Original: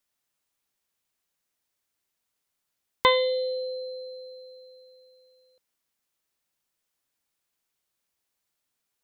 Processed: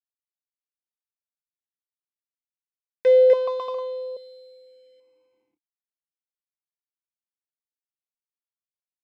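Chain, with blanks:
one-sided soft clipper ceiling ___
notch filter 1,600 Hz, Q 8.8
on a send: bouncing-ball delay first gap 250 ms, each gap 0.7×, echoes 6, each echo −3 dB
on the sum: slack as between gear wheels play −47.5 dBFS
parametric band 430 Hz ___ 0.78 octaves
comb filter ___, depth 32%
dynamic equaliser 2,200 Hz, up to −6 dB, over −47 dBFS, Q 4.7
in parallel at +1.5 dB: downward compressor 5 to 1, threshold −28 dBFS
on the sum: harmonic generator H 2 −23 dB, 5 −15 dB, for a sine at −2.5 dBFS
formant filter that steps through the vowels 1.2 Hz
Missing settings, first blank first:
−22 dBFS, +4.5 dB, 1.8 ms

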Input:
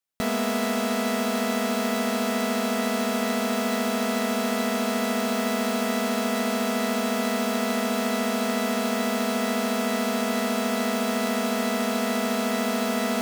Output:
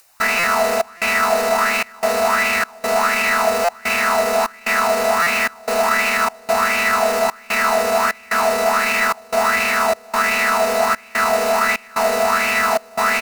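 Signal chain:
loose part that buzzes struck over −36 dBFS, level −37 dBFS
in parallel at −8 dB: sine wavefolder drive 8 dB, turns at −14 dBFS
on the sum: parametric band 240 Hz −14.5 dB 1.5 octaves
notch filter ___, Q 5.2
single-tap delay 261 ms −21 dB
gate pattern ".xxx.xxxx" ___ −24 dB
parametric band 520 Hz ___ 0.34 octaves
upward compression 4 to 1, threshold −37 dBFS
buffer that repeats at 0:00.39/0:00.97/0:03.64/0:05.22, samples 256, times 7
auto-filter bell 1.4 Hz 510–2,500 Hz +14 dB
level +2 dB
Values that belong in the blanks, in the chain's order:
3,300 Hz, 74 BPM, −9.5 dB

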